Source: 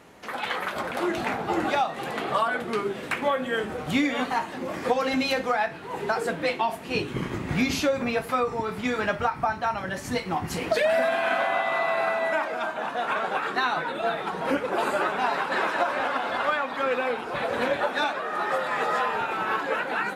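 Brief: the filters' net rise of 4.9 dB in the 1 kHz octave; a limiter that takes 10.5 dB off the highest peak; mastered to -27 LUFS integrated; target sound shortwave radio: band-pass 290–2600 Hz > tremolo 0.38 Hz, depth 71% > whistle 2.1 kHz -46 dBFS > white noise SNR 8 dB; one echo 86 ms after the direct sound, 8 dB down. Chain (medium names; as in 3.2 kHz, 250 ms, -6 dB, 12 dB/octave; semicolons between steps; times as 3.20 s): peaking EQ 1 kHz +6.5 dB; peak limiter -18 dBFS; band-pass 290–2600 Hz; delay 86 ms -8 dB; tremolo 0.38 Hz, depth 71%; whistle 2.1 kHz -46 dBFS; white noise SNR 8 dB; trim +2.5 dB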